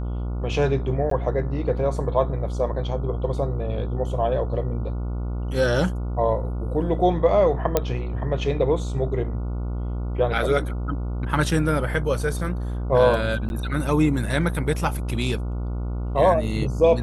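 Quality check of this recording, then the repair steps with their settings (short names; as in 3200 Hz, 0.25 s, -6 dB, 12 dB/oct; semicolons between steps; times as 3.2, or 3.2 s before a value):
buzz 60 Hz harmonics 24 -27 dBFS
1.1–1.11 gap 13 ms
7.77 pop -5 dBFS
13.49–13.5 gap 11 ms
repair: de-click; de-hum 60 Hz, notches 24; interpolate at 1.1, 13 ms; interpolate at 13.49, 11 ms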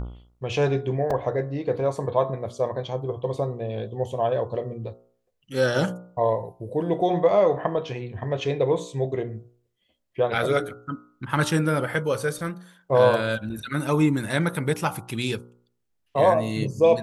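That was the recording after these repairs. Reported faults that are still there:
none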